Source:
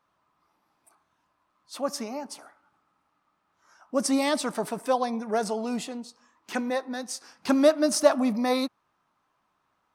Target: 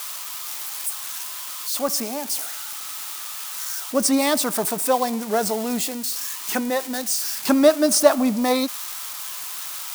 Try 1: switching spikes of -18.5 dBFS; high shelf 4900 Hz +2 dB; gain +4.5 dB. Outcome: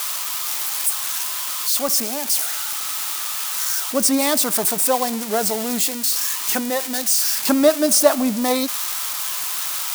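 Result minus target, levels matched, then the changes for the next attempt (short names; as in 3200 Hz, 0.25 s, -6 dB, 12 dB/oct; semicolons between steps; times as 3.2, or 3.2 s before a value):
switching spikes: distortion +7 dB
change: switching spikes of -25.5 dBFS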